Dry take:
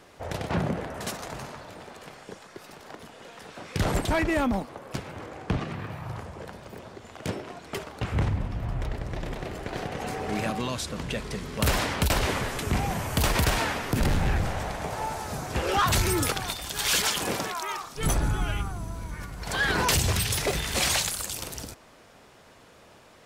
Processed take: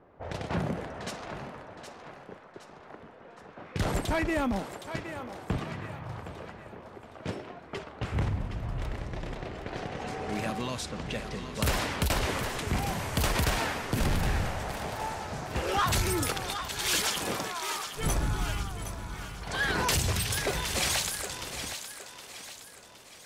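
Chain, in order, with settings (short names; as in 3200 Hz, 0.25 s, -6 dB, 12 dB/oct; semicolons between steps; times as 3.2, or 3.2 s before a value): low-pass opened by the level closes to 1000 Hz, open at -26 dBFS; thinning echo 0.766 s, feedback 46%, level -9 dB; gain -3.5 dB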